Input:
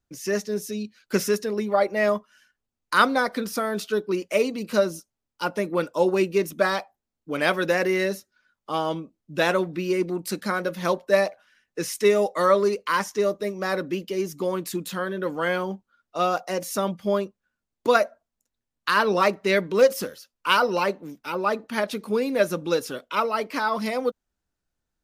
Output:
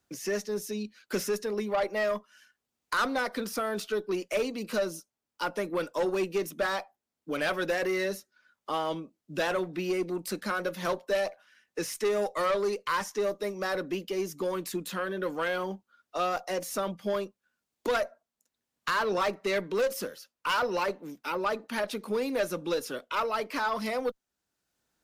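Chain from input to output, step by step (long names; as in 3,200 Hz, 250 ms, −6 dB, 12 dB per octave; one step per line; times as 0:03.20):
high-pass filter 230 Hz 6 dB per octave
tube saturation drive 18 dB, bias 0.2
multiband upward and downward compressor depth 40%
level −3 dB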